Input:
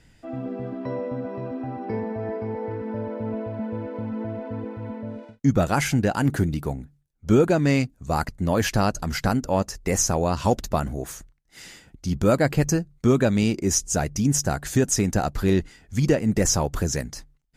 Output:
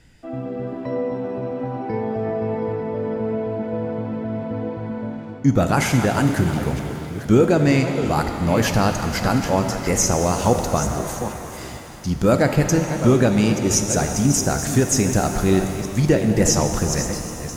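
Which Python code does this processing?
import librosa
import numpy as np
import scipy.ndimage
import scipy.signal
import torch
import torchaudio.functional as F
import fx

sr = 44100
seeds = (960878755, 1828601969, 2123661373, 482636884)

y = fx.reverse_delay(x, sr, ms=453, wet_db=-10.5)
y = fx.rev_shimmer(y, sr, seeds[0], rt60_s=3.2, semitones=7, shimmer_db=-8, drr_db=6.0)
y = F.gain(torch.from_numpy(y), 2.5).numpy()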